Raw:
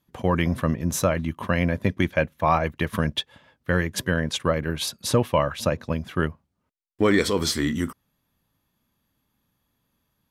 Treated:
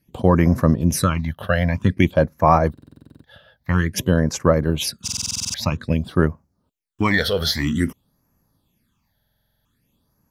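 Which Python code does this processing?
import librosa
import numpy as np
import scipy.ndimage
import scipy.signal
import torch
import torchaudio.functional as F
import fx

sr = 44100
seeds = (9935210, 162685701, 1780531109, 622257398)

y = fx.phaser_stages(x, sr, stages=8, low_hz=290.0, high_hz=3400.0, hz=0.51, feedback_pct=25)
y = fx.buffer_glitch(y, sr, at_s=(2.73, 5.03, 9.14), block=2048, repeats=10)
y = F.gain(torch.from_numpy(y), 6.5).numpy()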